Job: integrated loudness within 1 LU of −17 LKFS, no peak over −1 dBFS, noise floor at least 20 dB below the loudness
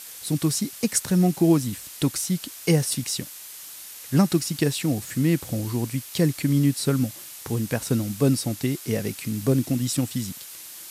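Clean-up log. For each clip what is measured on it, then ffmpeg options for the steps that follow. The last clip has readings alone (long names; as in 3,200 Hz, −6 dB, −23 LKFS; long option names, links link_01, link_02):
background noise floor −41 dBFS; target noise floor −45 dBFS; integrated loudness −24.5 LKFS; sample peak −7.0 dBFS; target loudness −17.0 LKFS
→ -af "afftdn=noise_reduction=6:noise_floor=-41"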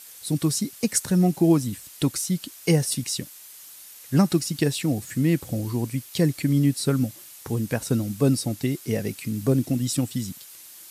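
background noise floor −45 dBFS; integrated loudness −24.5 LKFS; sample peak −7.0 dBFS; target loudness −17.0 LKFS
→ -af "volume=7.5dB,alimiter=limit=-1dB:level=0:latency=1"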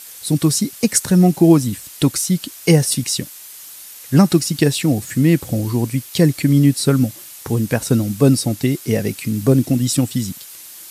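integrated loudness −17.0 LKFS; sample peak −1.0 dBFS; background noise floor −38 dBFS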